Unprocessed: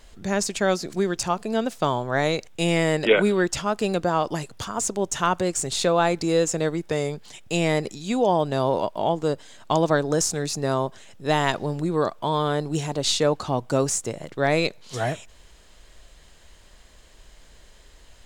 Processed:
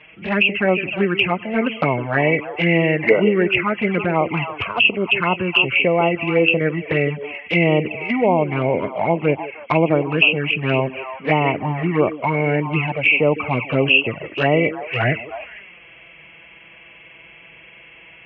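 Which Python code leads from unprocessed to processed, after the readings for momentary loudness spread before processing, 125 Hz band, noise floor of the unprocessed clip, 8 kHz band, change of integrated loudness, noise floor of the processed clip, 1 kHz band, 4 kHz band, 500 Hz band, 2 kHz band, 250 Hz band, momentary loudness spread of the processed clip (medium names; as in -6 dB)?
7 LU, +6.0 dB, -51 dBFS, under -35 dB, +6.0 dB, -45 dBFS, +2.5 dB, +5.5 dB, +4.0 dB, +11.5 dB, +5.0 dB, 7 LU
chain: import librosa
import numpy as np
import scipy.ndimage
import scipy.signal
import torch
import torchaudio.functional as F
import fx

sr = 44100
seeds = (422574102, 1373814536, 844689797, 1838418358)

p1 = fx.freq_compress(x, sr, knee_hz=1900.0, ratio=4.0)
p2 = fx.rider(p1, sr, range_db=5, speed_s=0.5)
p3 = p1 + (p2 * 10.0 ** (2.0 / 20.0))
p4 = scipy.signal.sosfilt(scipy.signal.butter(4, 82.0, 'highpass', fs=sr, output='sos'), p3)
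p5 = fx.high_shelf(p4, sr, hz=2200.0, db=9.0)
p6 = p5 + fx.echo_stepped(p5, sr, ms=157, hz=340.0, octaves=1.4, feedback_pct=70, wet_db=-7, dry=0)
p7 = fx.env_flanger(p6, sr, rest_ms=6.9, full_db=-8.0)
p8 = fx.air_absorb(p7, sr, metres=120.0)
y = p8 * 10.0 ** (-1.0 / 20.0)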